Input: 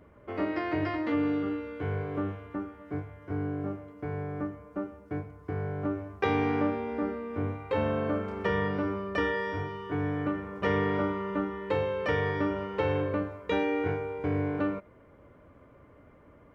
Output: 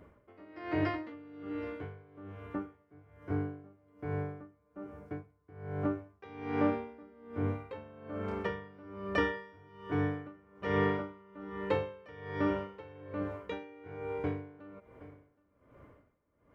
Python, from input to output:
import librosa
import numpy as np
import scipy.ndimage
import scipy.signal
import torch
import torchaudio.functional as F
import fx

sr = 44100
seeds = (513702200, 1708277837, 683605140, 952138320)

y = x + 10.0 ** (-21.0 / 20.0) * np.pad(x, (int(771 * sr / 1000.0), 0))[:len(x)]
y = y * 10.0 ** (-24 * (0.5 - 0.5 * np.cos(2.0 * np.pi * 1.2 * np.arange(len(y)) / sr)) / 20.0)